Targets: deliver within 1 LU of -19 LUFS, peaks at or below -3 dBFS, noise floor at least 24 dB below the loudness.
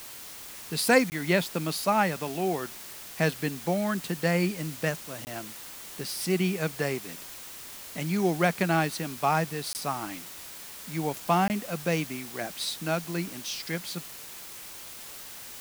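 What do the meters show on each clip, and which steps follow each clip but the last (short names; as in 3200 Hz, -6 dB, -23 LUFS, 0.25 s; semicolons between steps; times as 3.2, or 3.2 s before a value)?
dropouts 4; longest dropout 19 ms; noise floor -43 dBFS; noise floor target -53 dBFS; loudness -29.0 LUFS; peak -8.5 dBFS; loudness target -19.0 LUFS
-> interpolate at 1.1/5.25/9.73/11.48, 19 ms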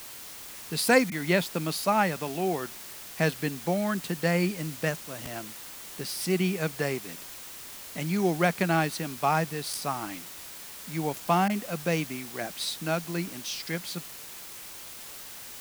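dropouts 0; noise floor -43 dBFS; noise floor target -53 dBFS
-> denoiser 10 dB, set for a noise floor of -43 dBFS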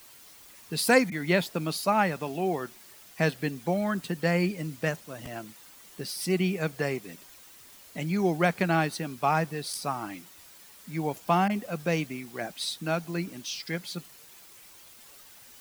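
noise floor -52 dBFS; noise floor target -53 dBFS
-> denoiser 6 dB, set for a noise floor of -52 dBFS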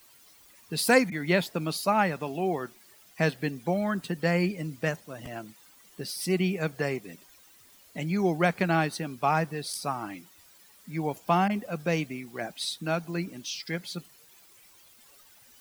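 noise floor -57 dBFS; loudness -29.0 LUFS; peak -8.5 dBFS; loudness target -19.0 LUFS
-> gain +10 dB; limiter -3 dBFS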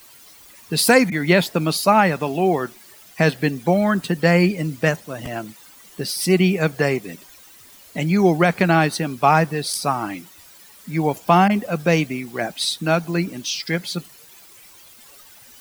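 loudness -19.5 LUFS; peak -3.0 dBFS; noise floor -47 dBFS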